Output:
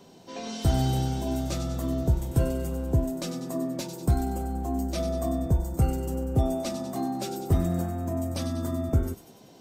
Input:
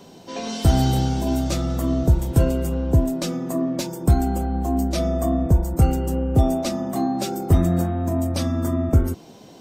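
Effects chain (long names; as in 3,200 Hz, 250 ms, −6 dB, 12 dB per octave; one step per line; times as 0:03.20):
delay with a high-pass on its return 96 ms, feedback 57%, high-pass 3,300 Hz, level −7.5 dB
on a send at −15 dB: convolution reverb RT60 0.50 s, pre-delay 4 ms
on the sum: level −7 dB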